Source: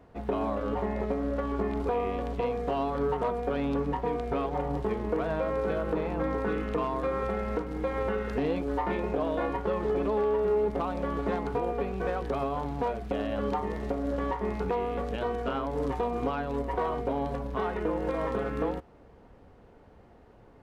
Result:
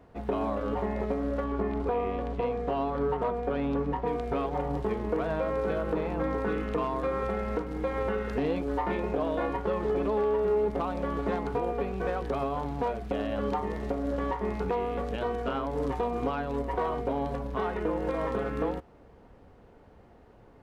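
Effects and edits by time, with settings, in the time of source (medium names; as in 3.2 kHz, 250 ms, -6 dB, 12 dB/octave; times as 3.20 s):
1.44–4.07 s: low-pass 3.2 kHz 6 dB/octave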